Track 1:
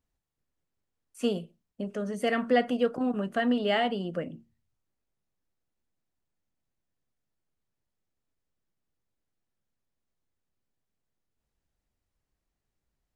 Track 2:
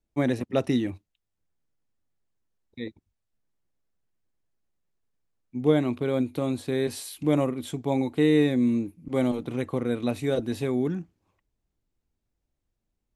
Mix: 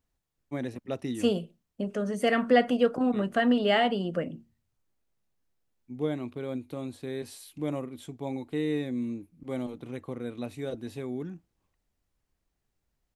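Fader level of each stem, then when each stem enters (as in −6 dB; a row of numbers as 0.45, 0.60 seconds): +2.5, −9.0 decibels; 0.00, 0.35 seconds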